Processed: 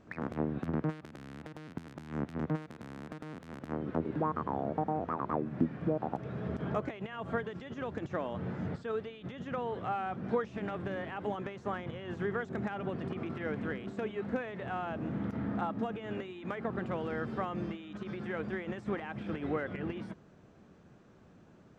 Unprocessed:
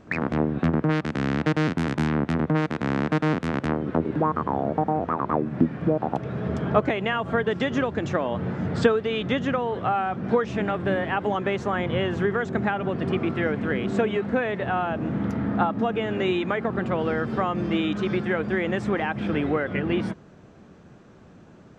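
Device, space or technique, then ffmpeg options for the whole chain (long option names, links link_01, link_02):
de-esser from a sidechain: -filter_complex "[0:a]asplit=2[link_01][link_02];[link_02]highpass=frequency=4300:width=0.5412,highpass=frequency=4300:width=1.3066,apad=whole_len=960594[link_03];[link_01][link_03]sidechaincompress=threshold=-57dB:ratio=8:attack=2.6:release=34,volume=-9dB"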